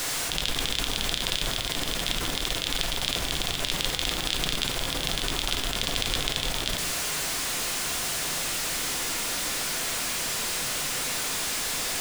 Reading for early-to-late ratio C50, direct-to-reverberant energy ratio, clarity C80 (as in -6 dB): 9.5 dB, 4.0 dB, 12.5 dB